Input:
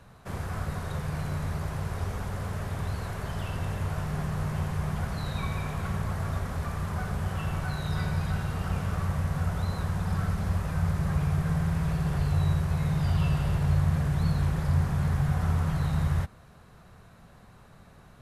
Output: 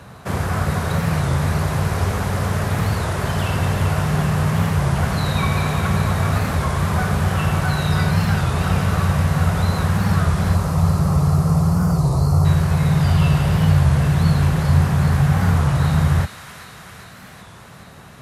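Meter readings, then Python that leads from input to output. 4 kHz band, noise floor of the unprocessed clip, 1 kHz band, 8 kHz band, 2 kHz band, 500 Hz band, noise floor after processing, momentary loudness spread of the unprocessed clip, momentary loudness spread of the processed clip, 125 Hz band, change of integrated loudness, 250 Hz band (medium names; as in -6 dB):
+13.5 dB, -53 dBFS, +12.5 dB, +14.0 dB, +13.0 dB, +12.5 dB, -41 dBFS, 7 LU, 5 LU, +10.5 dB, +11.0 dB, +12.0 dB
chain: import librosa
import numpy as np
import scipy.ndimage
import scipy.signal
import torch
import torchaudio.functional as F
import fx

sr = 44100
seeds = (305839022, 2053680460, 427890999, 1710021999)

p1 = fx.spec_box(x, sr, start_s=10.55, length_s=1.9, low_hz=1400.0, high_hz=4100.0, gain_db=-26)
p2 = scipy.signal.sosfilt(scipy.signal.butter(2, 76.0, 'highpass', fs=sr, output='sos'), p1)
p3 = fx.rider(p2, sr, range_db=3, speed_s=0.5)
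p4 = p2 + F.gain(torch.from_numpy(p3), -3.0).numpy()
p5 = fx.echo_wet_highpass(p4, sr, ms=396, feedback_pct=72, hz=1700.0, wet_db=-7.5)
p6 = fx.record_warp(p5, sr, rpm=33.33, depth_cents=160.0)
y = F.gain(torch.from_numpy(p6), 7.5).numpy()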